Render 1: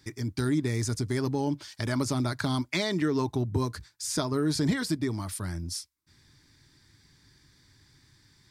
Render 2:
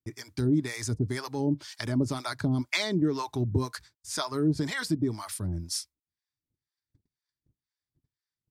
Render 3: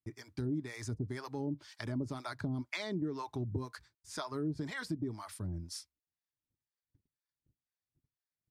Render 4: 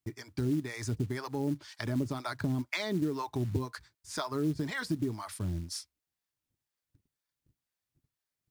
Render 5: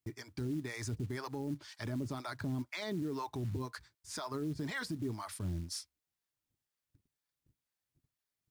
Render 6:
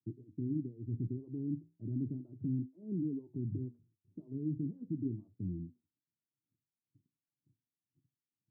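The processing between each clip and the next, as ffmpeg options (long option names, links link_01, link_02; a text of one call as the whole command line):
ffmpeg -i in.wav -filter_complex "[0:a]acrossover=split=620[link_01][link_02];[link_01]aeval=exprs='val(0)*(1-1/2+1/2*cos(2*PI*2*n/s))':channel_layout=same[link_03];[link_02]aeval=exprs='val(0)*(1-1/2-1/2*cos(2*PI*2*n/s))':channel_layout=same[link_04];[link_03][link_04]amix=inputs=2:normalize=0,agate=range=-33dB:threshold=-59dB:ratio=16:detection=peak,volume=3.5dB" out.wav
ffmpeg -i in.wav -af "highshelf=frequency=3300:gain=-9,acompressor=threshold=-31dB:ratio=2,volume=-5dB" out.wav
ffmpeg -i in.wav -af "acrusher=bits=6:mode=log:mix=0:aa=0.000001,volume=5dB" out.wav
ffmpeg -i in.wav -af "alimiter=level_in=4dB:limit=-24dB:level=0:latency=1:release=11,volume=-4dB,volume=-2dB" out.wav
ffmpeg -i in.wav -af "flanger=delay=9.1:depth=7.9:regen=-72:speed=0.36:shape=triangular,asuperpass=centerf=190:order=8:qfactor=0.78,volume=6.5dB" out.wav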